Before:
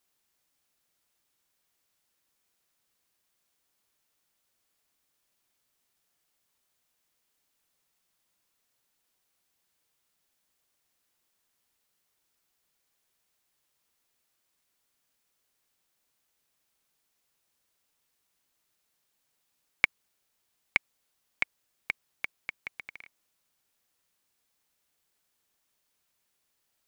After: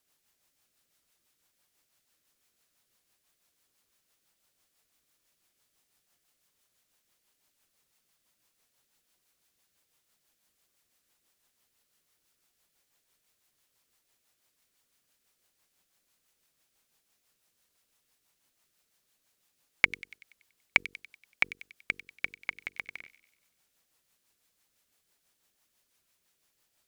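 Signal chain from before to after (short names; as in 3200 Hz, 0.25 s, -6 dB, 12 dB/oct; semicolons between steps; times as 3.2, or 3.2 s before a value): de-hum 47.44 Hz, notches 10; rotary speaker horn 6 Hz; thin delay 95 ms, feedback 51%, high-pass 3200 Hz, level -10 dB; gain +5.5 dB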